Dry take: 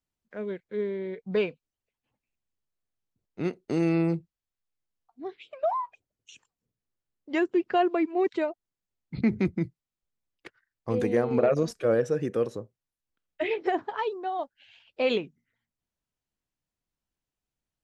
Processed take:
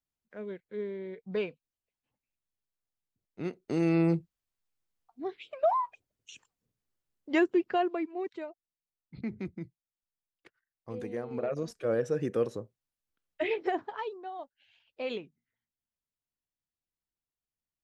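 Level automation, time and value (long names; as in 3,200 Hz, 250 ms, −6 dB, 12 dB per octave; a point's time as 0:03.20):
0:03.45 −6 dB
0:04.16 +1 dB
0:07.38 +1 dB
0:08.34 −12 dB
0:11.29 −12 dB
0:12.25 −2 dB
0:13.52 −2 dB
0:14.36 −10 dB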